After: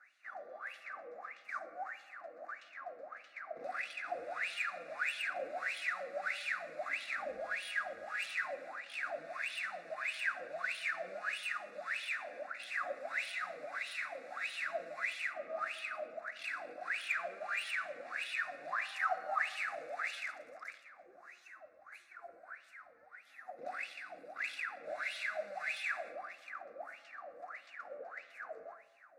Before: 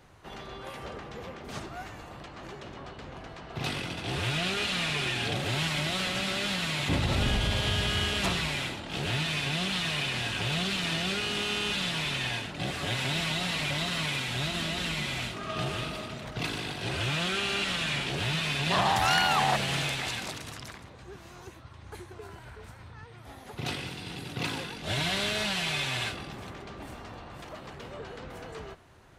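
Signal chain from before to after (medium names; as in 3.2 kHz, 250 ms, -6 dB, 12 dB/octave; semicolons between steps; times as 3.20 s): tilt EQ +2.5 dB/octave; peak limiter -21 dBFS, peak gain reduction 10.5 dB; wah-wah 1.6 Hz 470–3200 Hz, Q 17; in parallel at -5 dB: saturation -37 dBFS, distortion -15 dB; on the sum: static phaser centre 630 Hz, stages 8; reverberation, pre-delay 7 ms, DRR 11.5 dB; trim +10 dB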